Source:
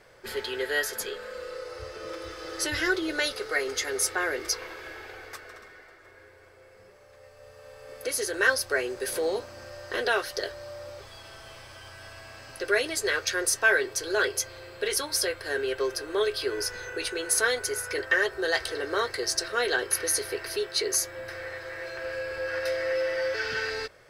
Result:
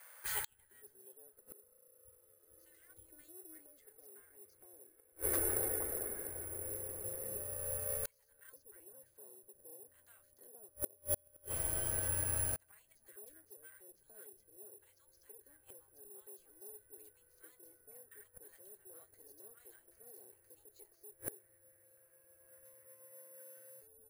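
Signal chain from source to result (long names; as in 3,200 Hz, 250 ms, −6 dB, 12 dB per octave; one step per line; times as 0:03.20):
tilt shelving filter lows +8 dB, about 680 Hz
tube saturation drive 19 dB, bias 0.55
three-band delay without the direct sound highs, lows, mids 250/470 ms, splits 160/930 Hz
gate with flip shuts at −34 dBFS, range −38 dB
high-shelf EQ 4,300 Hz −7 dB
bad sample-rate conversion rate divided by 4×, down filtered, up zero stuff
level +6 dB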